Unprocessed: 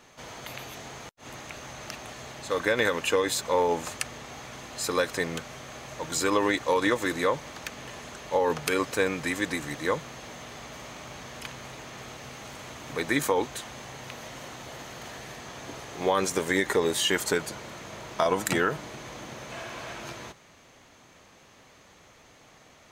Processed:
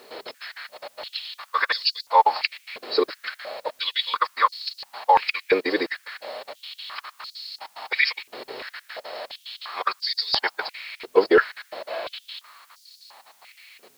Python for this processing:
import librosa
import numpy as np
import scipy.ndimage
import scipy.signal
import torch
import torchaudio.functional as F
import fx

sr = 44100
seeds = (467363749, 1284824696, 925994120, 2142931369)

p1 = fx.freq_compress(x, sr, knee_hz=3800.0, ratio=4.0)
p2 = fx.step_gate(p1, sr, bpm=178, pattern='xxxx.x..xx.', floor_db=-60.0, edge_ms=4.5)
p3 = fx.add_hum(p2, sr, base_hz=50, snr_db=23)
p4 = fx.quant_dither(p3, sr, seeds[0], bits=8, dither='triangular')
p5 = p3 + F.gain(torch.from_numpy(p4), -11.0).numpy()
p6 = fx.stretch_vocoder(p5, sr, factor=0.61)
p7 = fx.filter_held_highpass(p6, sr, hz=2.9, low_hz=410.0, high_hz=4600.0)
y = F.gain(torch.from_numpy(p7), 2.0).numpy()